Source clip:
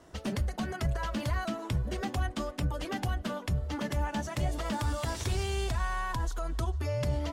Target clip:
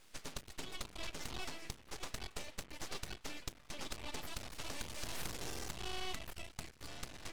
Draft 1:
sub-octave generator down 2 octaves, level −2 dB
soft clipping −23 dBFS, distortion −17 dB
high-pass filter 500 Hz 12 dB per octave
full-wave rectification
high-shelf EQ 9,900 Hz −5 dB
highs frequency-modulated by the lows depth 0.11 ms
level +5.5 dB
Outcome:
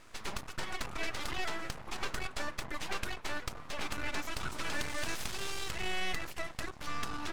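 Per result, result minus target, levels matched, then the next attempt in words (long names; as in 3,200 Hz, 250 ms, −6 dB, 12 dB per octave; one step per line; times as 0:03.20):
soft clipping: distortion −9 dB; 2,000 Hz band +4.0 dB
sub-octave generator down 2 octaves, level −2 dB
soft clipping −31.5 dBFS, distortion −9 dB
high-pass filter 500 Hz 12 dB per octave
full-wave rectification
high-shelf EQ 9,900 Hz −5 dB
highs frequency-modulated by the lows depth 0.11 ms
level +5.5 dB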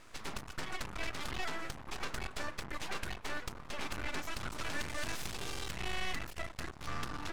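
2,000 Hz band +3.5 dB
sub-octave generator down 2 octaves, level −2 dB
soft clipping −31.5 dBFS, distortion −9 dB
high-pass filter 1,600 Hz 12 dB per octave
full-wave rectification
high-shelf EQ 9,900 Hz −5 dB
highs frequency-modulated by the lows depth 0.11 ms
level +5.5 dB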